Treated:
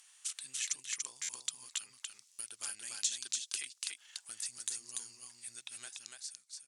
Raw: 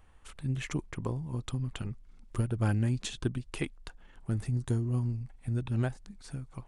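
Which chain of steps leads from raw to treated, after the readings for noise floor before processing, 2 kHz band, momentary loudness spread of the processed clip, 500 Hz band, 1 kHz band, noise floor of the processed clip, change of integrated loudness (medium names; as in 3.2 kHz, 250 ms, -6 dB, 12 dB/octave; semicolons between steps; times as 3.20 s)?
-56 dBFS, -4.0 dB, 11 LU, -26.5 dB, -13.5 dB, -68 dBFS, -6.0 dB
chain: fade out at the end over 1.49 s; tilt EQ +4.5 dB/octave; compression 3:1, threshold -42 dBFS, peak gain reduction 14 dB; band-pass filter 6.1 kHz, Q 1.4; delay 289 ms -3 dB; buffer glitch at 1.22/2.32 s, samples 512, times 5; trim +9.5 dB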